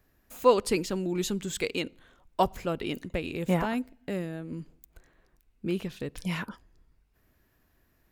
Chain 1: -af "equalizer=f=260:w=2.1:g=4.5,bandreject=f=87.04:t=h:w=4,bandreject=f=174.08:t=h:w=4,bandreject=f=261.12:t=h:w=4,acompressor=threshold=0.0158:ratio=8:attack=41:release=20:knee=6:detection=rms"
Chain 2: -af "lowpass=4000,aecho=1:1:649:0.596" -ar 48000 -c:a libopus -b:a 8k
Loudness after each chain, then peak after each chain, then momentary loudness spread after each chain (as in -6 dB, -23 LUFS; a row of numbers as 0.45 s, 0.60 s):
-37.0 LUFS, -31.0 LUFS; -20.0 dBFS, -9.5 dBFS; 8 LU, 14 LU